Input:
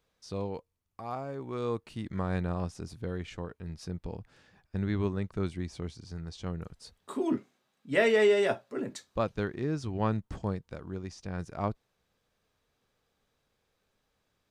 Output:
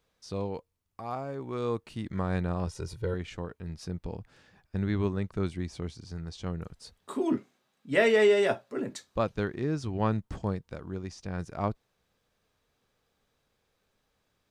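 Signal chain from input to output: 2.67–3.14 comb 2.1 ms, depth 94%; gain +1.5 dB

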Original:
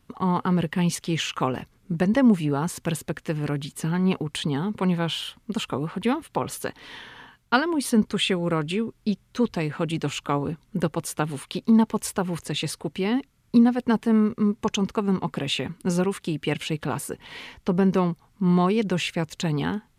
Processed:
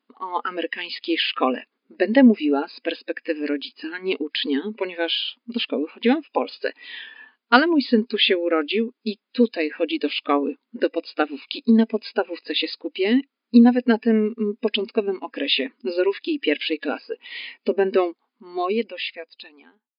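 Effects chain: ending faded out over 1.98 s; spectral noise reduction 16 dB; brick-wall FIR band-pass 220–5100 Hz; gain +6.5 dB

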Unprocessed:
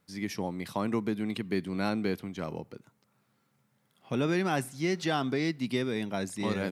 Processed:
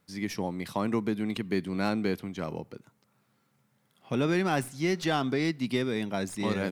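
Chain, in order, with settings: tracing distortion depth 0.02 ms; gain +1.5 dB

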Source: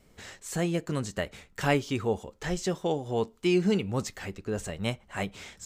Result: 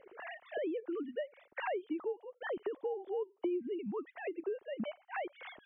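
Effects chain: sine-wave speech; tilt shelf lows +7.5 dB; compressor 6:1, threshold -48 dBFS, peak gain reduction 33.5 dB; gain +10.5 dB

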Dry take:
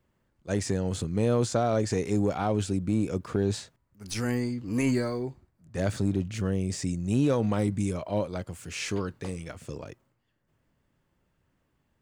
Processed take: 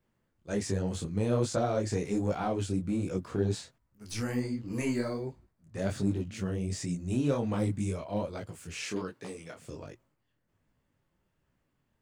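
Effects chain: 8.85–9.66 HPF 190 Hz 12 dB/oct; detuned doubles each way 45 cents

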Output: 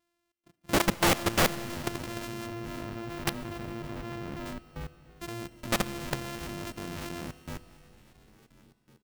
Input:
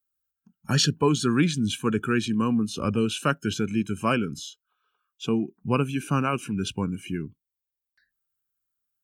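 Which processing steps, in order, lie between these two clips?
sample sorter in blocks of 128 samples; 2.46–4.46 bell 9700 Hz -14 dB 2.4 oct; frequency-shifting echo 0.351 s, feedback 57%, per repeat -96 Hz, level -15 dB; level quantiser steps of 21 dB; wrapped overs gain 21 dB; bell 610 Hz -2.5 dB 2.4 oct; Schroeder reverb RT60 3 s, combs from 26 ms, DRR 16 dB; gain +5.5 dB

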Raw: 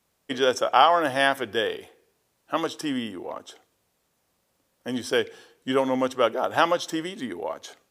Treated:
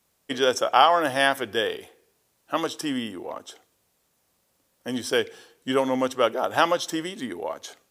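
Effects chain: high shelf 5100 Hz +5 dB

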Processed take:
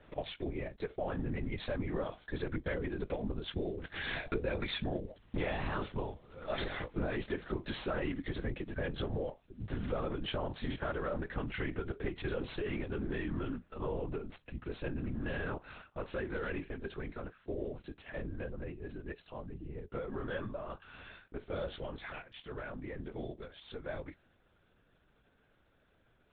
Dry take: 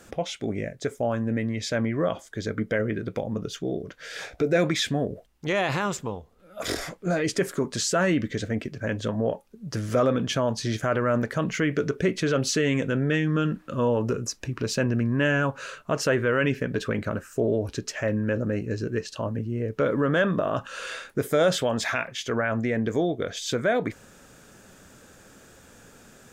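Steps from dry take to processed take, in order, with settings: CVSD 64 kbps; Doppler pass-by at 5.64, 6 m/s, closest 7.3 m; compressor 12:1, threshold -38 dBFS, peak gain reduction 18 dB; LPC vocoder at 8 kHz whisper; gain +6 dB; AAC 48 kbps 24000 Hz

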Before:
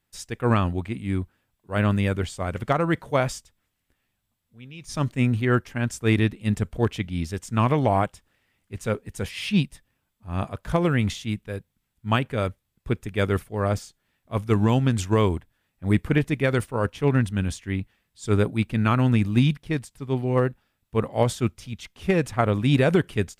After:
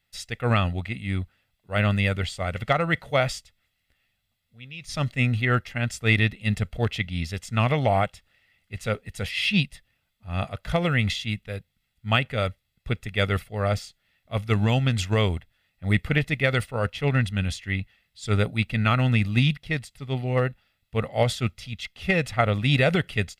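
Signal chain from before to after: band shelf 2900 Hz +8 dB; comb 1.5 ms, depth 50%; gain -2.5 dB

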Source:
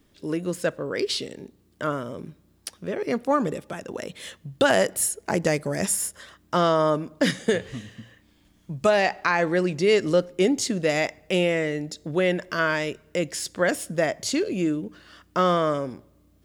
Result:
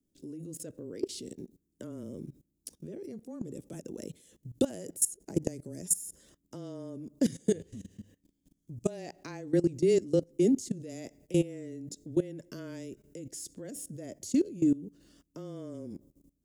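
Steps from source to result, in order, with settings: frequency shift -17 Hz; EQ curve 100 Hz 0 dB, 310 Hz +6 dB, 1200 Hz -18 dB, 4300 Hz -7 dB, 6700 Hz +4 dB; level quantiser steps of 19 dB; gain -3.5 dB

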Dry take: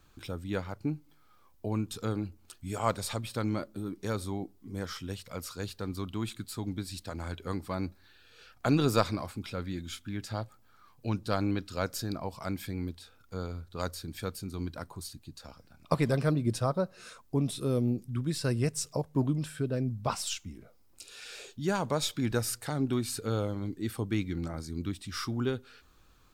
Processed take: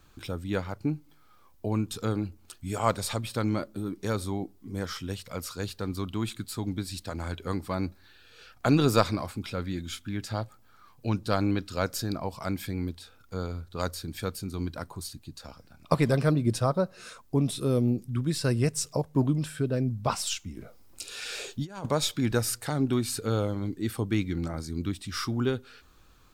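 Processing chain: 20.57–21.86 negative-ratio compressor -36 dBFS, ratio -0.5; gain +3.5 dB

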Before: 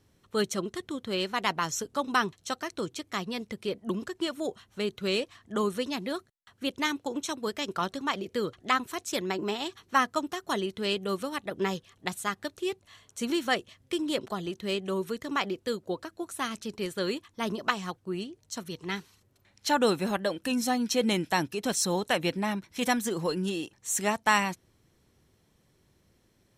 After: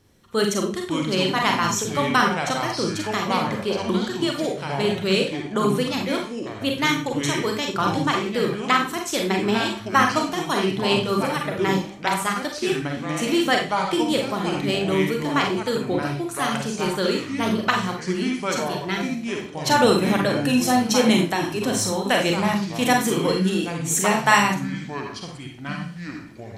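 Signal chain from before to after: Schroeder reverb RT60 0.34 s, combs from 32 ms, DRR 1.5 dB; 21.24–22.07 compressor, threshold -26 dBFS, peak gain reduction 7 dB; echoes that change speed 0.436 s, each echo -5 st, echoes 2, each echo -6 dB; gain +5.5 dB

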